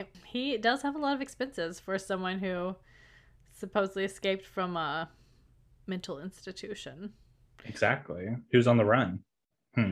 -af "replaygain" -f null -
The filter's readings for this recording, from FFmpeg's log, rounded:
track_gain = +10.2 dB
track_peak = 0.271